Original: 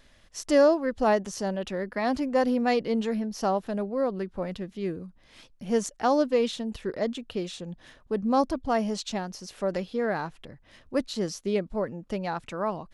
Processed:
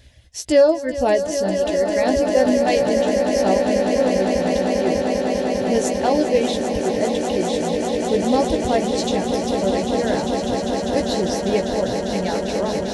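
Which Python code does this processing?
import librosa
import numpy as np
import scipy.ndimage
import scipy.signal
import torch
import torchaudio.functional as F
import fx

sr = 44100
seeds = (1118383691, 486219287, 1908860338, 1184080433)

y = scipy.signal.sosfilt(scipy.signal.butter(2, 63.0, 'highpass', fs=sr, output='sos'), x)
y = fx.low_shelf_res(y, sr, hz=140.0, db=10.0, q=1.5)
y = fx.dereverb_blind(y, sr, rt60_s=1.9)
y = fx.peak_eq(y, sr, hz=1200.0, db=-14.0, octaves=0.64)
y = fx.doubler(y, sr, ms=16.0, db=-7.5)
y = fx.echo_swell(y, sr, ms=199, loudest=8, wet_db=-9.0)
y = y * 10.0 ** (7.0 / 20.0)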